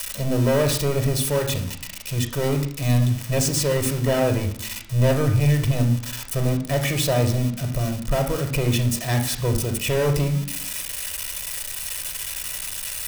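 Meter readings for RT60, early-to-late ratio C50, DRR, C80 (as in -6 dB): 0.60 s, 9.0 dB, 4.5 dB, 12.5 dB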